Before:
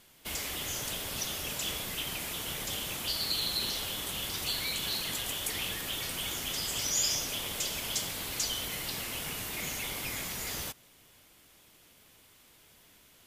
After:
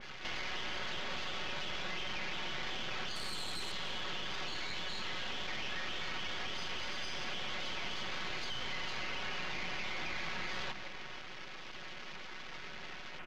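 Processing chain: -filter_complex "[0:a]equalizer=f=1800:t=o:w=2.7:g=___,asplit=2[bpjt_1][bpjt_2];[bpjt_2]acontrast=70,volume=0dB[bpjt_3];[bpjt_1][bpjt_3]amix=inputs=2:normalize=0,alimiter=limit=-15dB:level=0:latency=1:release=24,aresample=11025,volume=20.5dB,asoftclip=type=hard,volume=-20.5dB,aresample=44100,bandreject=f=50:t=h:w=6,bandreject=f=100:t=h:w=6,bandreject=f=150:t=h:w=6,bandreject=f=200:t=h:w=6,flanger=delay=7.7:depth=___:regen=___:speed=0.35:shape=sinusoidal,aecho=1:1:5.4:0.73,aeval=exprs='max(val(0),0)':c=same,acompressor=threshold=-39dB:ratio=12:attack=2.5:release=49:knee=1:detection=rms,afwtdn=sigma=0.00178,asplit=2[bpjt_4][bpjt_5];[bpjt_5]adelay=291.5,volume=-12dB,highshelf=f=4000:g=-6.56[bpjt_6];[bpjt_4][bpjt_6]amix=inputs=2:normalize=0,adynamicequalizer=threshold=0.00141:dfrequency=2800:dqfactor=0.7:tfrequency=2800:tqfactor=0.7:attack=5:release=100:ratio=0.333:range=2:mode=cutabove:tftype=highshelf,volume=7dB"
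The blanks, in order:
10, 5, -61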